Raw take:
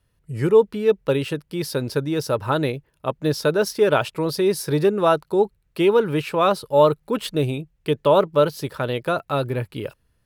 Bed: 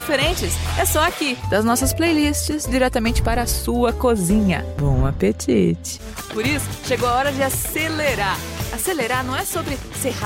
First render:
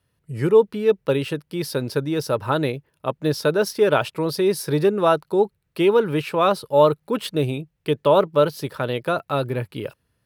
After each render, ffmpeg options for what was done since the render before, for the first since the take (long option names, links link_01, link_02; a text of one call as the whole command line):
ffmpeg -i in.wav -af "highpass=85,equalizer=frequency=7100:width_type=o:width=0.41:gain=-3" out.wav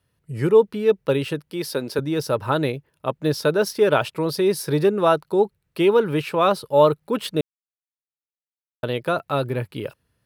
ffmpeg -i in.wav -filter_complex "[0:a]asettb=1/sr,asplit=3[link_01][link_02][link_03];[link_01]atrim=end=1.504[link_04];[link_02]atrim=start=1.5:end=1.99,asetpts=PTS-STARTPTS,afade=type=in:duration=0.004:curve=qsin,afade=type=out:start_time=0.486:duration=0.004:curve=qsin,highpass=210[link_05];[link_03]atrim=start=1.986[link_06];[link_04][link_05]acrossfade=duration=0.004:curve1=hsin:curve2=qsin[link_07];[link_07][link_06]acrossfade=duration=0.004:curve1=qsin:curve2=hsin,asplit=3[link_08][link_09][link_10];[link_08]atrim=end=7.41,asetpts=PTS-STARTPTS,afade=type=out:start_time=7.406:duration=0.004:curve=hsin[link_11];[link_09]atrim=start=7.41:end=8.83,asetpts=PTS-STARTPTS,volume=0[link_12];[link_10]atrim=start=8.83,asetpts=PTS-STARTPTS,afade=type=in:duration=0.004:curve=hsin[link_13];[link_11][link_12][link_13]concat=n=3:v=0:a=1" out.wav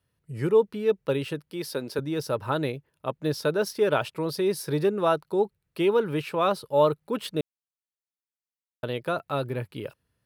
ffmpeg -i in.wav -af "volume=-5.5dB" out.wav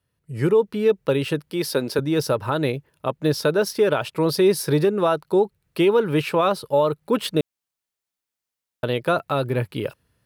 ffmpeg -i in.wav -af "alimiter=limit=-18dB:level=0:latency=1:release=263,dynaudnorm=framelen=250:gausssize=3:maxgain=8.5dB" out.wav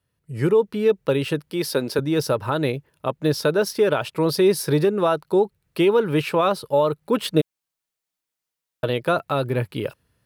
ffmpeg -i in.wav -filter_complex "[0:a]asettb=1/sr,asplit=3[link_01][link_02][link_03];[link_01]atrim=end=7.334[link_04];[link_02]atrim=start=7.33:end=8.9,asetpts=PTS-STARTPTS,afade=type=in:duration=0.004:curve=qsin,afade=type=out:start_time=1.566:duration=0.004:curve=qsin,aecho=1:1:6.3:0.47,atrim=end_sample=69237[link_05];[link_03]atrim=start=8.896[link_06];[link_04][link_05]acrossfade=duration=0.004:curve1=hsin:curve2=qsin[link_07];[link_07][link_06]acrossfade=duration=0.004:curve1=qsin:curve2=hsin" out.wav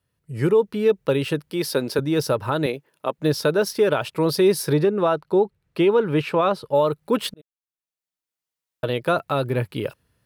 ffmpeg -i in.wav -filter_complex "[0:a]asettb=1/sr,asplit=3[link_01][link_02][link_03];[link_01]atrim=end=2.664[link_04];[link_02]atrim=start=2.66:end=3.18,asetpts=PTS-STARTPTS,afade=type=in:duration=0.004:curve=qsin,afade=type=out:start_time=0.516:duration=0.004:curve=qsin,highpass=250[link_05];[link_03]atrim=start=3.176[link_06];[link_04][link_05]acrossfade=duration=0.004:curve1=hsin:curve2=qsin[link_07];[link_07][link_06]acrossfade=duration=0.004:curve1=qsin:curve2=hsin,asettb=1/sr,asplit=3[link_08][link_09][link_10];[link_08]atrim=end=4.734[link_11];[link_09]atrim=start=4.73:end=6.75,asetpts=PTS-STARTPTS,afade=type=in:duration=0.004:curve=qsin,afade=type=out:start_time=2.016:duration=0.004:curve=qsin,lowpass=frequency=3300:poles=1[link_12];[link_10]atrim=start=6.746[link_13];[link_11][link_12]acrossfade=duration=0.004:curve1=hsin:curve2=qsin[link_14];[link_14][link_13]acrossfade=duration=0.004:curve1=qsin:curve2=hsin,asplit=2[link_15][link_16];[link_15]atrim=end=7.34,asetpts=PTS-STARTPTS,afade=type=out:start_time=7.336:duration=0.004:curve=hsin[link_17];[link_16]atrim=start=7.34,asetpts=PTS-STARTPTS,afade=type=in:duration=1.78[link_18];[link_17][link_18]concat=n=2:v=0:a=1" out.wav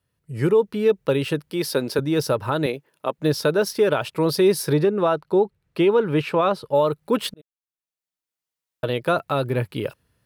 ffmpeg -i in.wav -af anull out.wav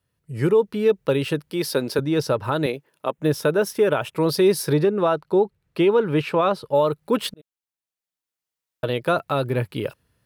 ffmpeg -i in.wav -filter_complex "[0:a]asettb=1/sr,asplit=3[link_01][link_02][link_03];[link_01]atrim=end=2.024[link_04];[link_02]atrim=start=2.02:end=2.44,asetpts=PTS-STARTPTS,afade=type=in:duration=0.004:curve=qsin,afade=type=out:start_time=0.416:duration=0.004:curve=qsin,highshelf=frequency=9300:gain=-9.5[link_05];[link_03]atrim=start=2.436[link_06];[link_04][link_05]acrossfade=duration=0.004:curve1=hsin:curve2=qsin[link_07];[link_07][link_06]acrossfade=duration=0.004:curve1=qsin:curve2=hsin,asettb=1/sr,asplit=3[link_08][link_09][link_10];[link_08]atrim=end=3.114[link_11];[link_09]atrim=start=3.11:end=4.14,asetpts=PTS-STARTPTS,afade=type=in:duration=0.004:curve=qsin,afade=type=out:start_time=1.026:duration=0.004:curve=qsin,equalizer=frequency=4500:width=3.3:gain=-12[link_12];[link_10]atrim=start=4.136[link_13];[link_11][link_12]acrossfade=duration=0.004:curve1=hsin:curve2=qsin[link_14];[link_14][link_13]acrossfade=duration=0.004:curve1=qsin:curve2=hsin" out.wav